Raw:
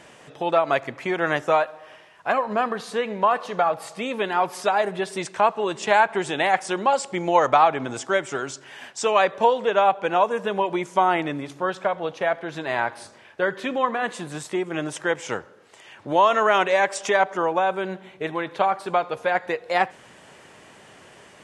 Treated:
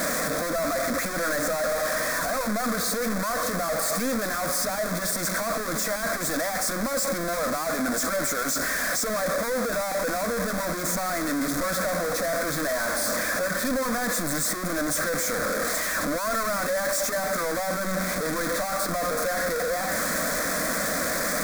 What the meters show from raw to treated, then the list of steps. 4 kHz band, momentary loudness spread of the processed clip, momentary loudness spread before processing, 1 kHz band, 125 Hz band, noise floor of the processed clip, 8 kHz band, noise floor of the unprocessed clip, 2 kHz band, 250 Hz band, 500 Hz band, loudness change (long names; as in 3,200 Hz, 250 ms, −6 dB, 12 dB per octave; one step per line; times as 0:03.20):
+1.5 dB, 2 LU, 11 LU, −8.0 dB, +1.5 dB, −29 dBFS, +12.5 dB, −50 dBFS, −0.5 dB, +1.0 dB, −4.0 dB, −2.5 dB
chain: sign of each sample alone
phaser with its sweep stopped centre 580 Hz, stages 8